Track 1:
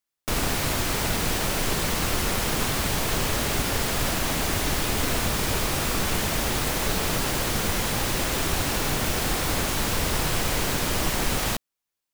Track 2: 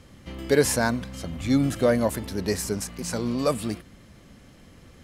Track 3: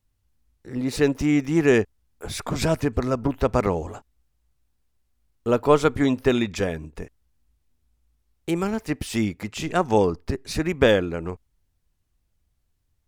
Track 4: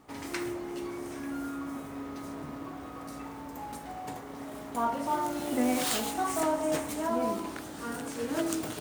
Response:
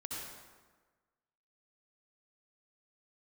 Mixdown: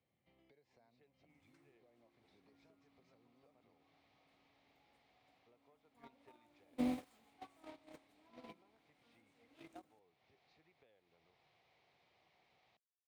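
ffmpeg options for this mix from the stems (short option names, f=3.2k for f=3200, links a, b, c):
-filter_complex "[0:a]adelay=1200,volume=-14.5dB[a];[1:a]equalizer=f=190:w=0.37:g=5.5,acompressor=threshold=-22dB:ratio=6,volume=-1.5dB[b];[2:a]acontrast=57,volume=-14.5dB[c];[3:a]aecho=1:1:3.8:0.36,adynamicequalizer=threshold=0.00398:dfrequency=1800:dqfactor=0.7:tfrequency=1800:tqfactor=0.7:attack=5:release=100:ratio=0.375:range=3:mode=cutabove:tftype=highshelf,adelay=1200,volume=-6dB[d];[a][b][c]amix=inputs=3:normalize=0,highpass=140,equalizer=f=200:t=q:w=4:g=-7,equalizer=f=280:t=q:w=4:g=-7,equalizer=f=740:t=q:w=4:g=9,equalizer=f=1.5k:t=q:w=4:g=-6,equalizer=f=2.2k:t=q:w=4:g=8,equalizer=f=3.8k:t=q:w=4:g=3,lowpass=f=4.6k:w=0.5412,lowpass=f=4.6k:w=1.3066,acompressor=threshold=-35dB:ratio=8,volume=0dB[e];[d][e]amix=inputs=2:normalize=0,agate=range=-34dB:threshold=-29dB:ratio=16:detection=peak,acrossover=split=280[f][g];[g]acompressor=threshold=-41dB:ratio=10[h];[f][h]amix=inputs=2:normalize=0"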